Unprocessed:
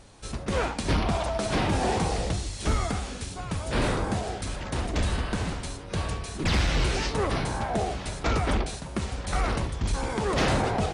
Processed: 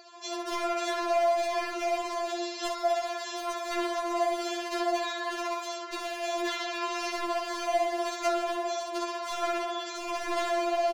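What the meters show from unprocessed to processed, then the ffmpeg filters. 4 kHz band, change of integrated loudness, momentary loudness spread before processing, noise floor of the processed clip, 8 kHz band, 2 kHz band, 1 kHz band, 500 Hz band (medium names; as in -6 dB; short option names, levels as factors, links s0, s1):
-2.0 dB, -2.5 dB, 8 LU, -38 dBFS, -3.5 dB, -2.5 dB, +1.5 dB, +1.5 dB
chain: -filter_complex "[0:a]aeval=exprs='val(0)+0.0126*sin(2*PI*4600*n/s)':c=same,equalizer=f=760:t=o:w=1.4:g=8.5,asplit=2[s0][s1];[s1]adelay=63,lowpass=f=4800:p=1,volume=0.708,asplit=2[s2][s3];[s3]adelay=63,lowpass=f=4800:p=1,volume=0.54,asplit=2[s4][s5];[s5]adelay=63,lowpass=f=4800:p=1,volume=0.54,asplit=2[s6][s7];[s7]adelay=63,lowpass=f=4800:p=1,volume=0.54,asplit=2[s8][s9];[s9]adelay=63,lowpass=f=4800:p=1,volume=0.54,asplit=2[s10][s11];[s11]adelay=63,lowpass=f=4800:p=1,volume=0.54,asplit=2[s12][s13];[s13]adelay=63,lowpass=f=4800:p=1,volume=0.54[s14];[s0][s2][s4][s6][s8][s10][s12][s14]amix=inputs=8:normalize=0,asplit=2[s15][s16];[s16]aeval=exprs='clip(val(0),-1,0.0891)':c=same,volume=0.447[s17];[s15][s17]amix=inputs=2:normalize=0,acompressor=threshold=0.0891:ratio=20,asplit=2[s18][s19];[s19]adelay=25,volume=0.2[s20];[s18][s20]amix=inputs=2:normalize=0,afftfilt=real='re*between(b*sr/4096,340,7700)':imag='im*between(b*sr/4096,340,7700)':win_size=4096:overlap=0.75,aeval=exprs='0.0841*(abs(mod(val(0)/0.0841+3,4)-2)-1)':c=same,afftfilt=real='re*4*eq(mod(b,16),0)':imag='im*4*eq(mod(b,16),0)':win_size=2048:overlap=0.75"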